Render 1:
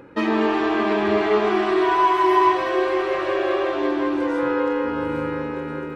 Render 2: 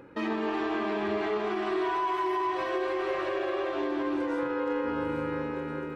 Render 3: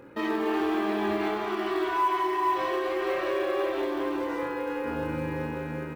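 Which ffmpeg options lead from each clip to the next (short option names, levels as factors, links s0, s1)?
-af "alimiter=limit=0.158:level=0:latency=1:release=91,volume=0.531"
-af "aecho=1:1:25|64:0.708|0.398,acrusher=bits=8:mode=log:mix=0:aa=0.000001"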